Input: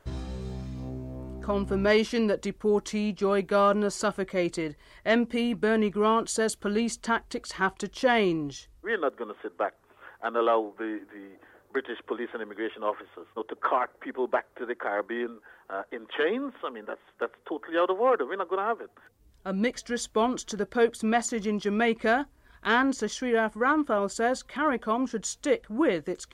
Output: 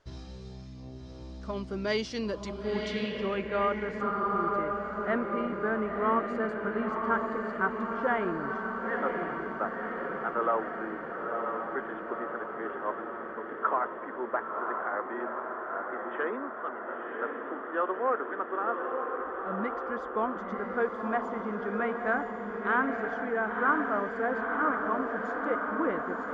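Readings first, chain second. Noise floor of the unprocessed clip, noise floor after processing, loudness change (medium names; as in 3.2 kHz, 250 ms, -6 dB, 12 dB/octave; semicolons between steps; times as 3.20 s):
-61 dBFS, -42 dBFS, -3.5 dB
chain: echo that smears into a reverb 999 ms, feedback 68%, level -3.5 dB; spectral replace 4.04–4.47 s, 440–5800 Hz after; low-pass sweep 5.3 kHz -> 1.4 kHz, 2.48–4.26 s; trim -8 dB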